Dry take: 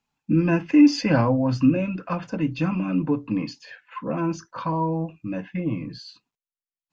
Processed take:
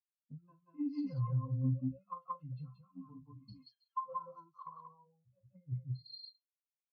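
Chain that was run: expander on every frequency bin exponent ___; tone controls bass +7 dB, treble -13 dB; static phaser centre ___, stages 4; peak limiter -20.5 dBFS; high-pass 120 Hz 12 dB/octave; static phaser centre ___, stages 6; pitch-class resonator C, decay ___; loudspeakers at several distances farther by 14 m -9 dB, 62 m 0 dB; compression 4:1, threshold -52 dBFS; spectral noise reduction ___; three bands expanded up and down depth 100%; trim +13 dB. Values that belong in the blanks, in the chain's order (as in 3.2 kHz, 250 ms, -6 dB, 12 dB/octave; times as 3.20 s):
2, 760 Hz, 2.3 kHz, 0.15 s, 21 dB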